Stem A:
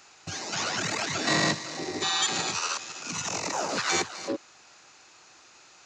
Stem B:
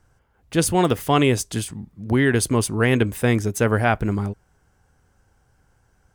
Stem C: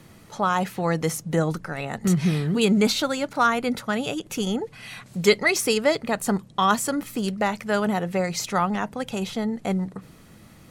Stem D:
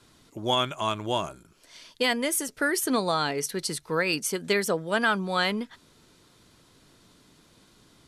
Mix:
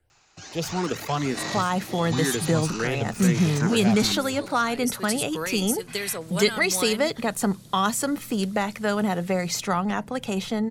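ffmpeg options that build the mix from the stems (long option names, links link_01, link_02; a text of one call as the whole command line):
ffmpeg -i stem1.wav -i stem2.wav -i stem3.wav -i stem4.wav -filter_complex "[0:a]adelay=100,volume=-7dB[link_01];[1:a]bandreject=frequency=50:width_type=h:width=6,bandreject=frequency=100:width_type=h:width=6,asplit=2[link_02][link_03];[link_03]afreqshift=2.1[link_04];[link_02][link_04]amix=inputs=2:normalize=1,volume=-5.5dB,asplit=2[link_05][link_06];[2:a]adelay=1150,volume=1dB[link_07];[3:a]aemphasis=mode=production:type=75fm,acompressor=threshold=-24dB:ratio=6,adelay=1450,volume=-2dB[link_08];[link_06]apad=whole_len=420211[link_09];[link_08][link_09]sidechaincompress=threshold=-41dB:ratio=8:attack=16:release=822[link_10];[link_01][link_05][link_07][link_10]amix=inputs=4:normalize=0,acrossover=split=210|3000[link_11][link_12][link_13];[link_12]acompressor=threshold=-23dB:ratio=2[link_14];[link_11][link_14][link_13]amix=inputs=3:normalize=0" out.wav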